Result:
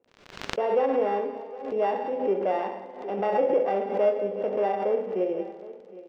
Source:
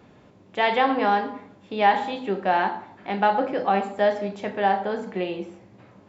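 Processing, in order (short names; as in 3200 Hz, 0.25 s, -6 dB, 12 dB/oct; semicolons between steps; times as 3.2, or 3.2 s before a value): sample sorter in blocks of 16 samples; gate -38 dBFS, range -33 dB; in parallel at +1 dB: limiter -16 dBFS, peak gain reduction 10.5 dB; on the sum: band-pass 490 Hz, Q 2.8; crackle 29/s -41 dBFS; air absorption 170 m; echo 0.763 s -18 dB; Schroeder reverb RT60 1.8 s, combs from 32 ms, DRR 11 dB; backwards sustainer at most 81 dB/s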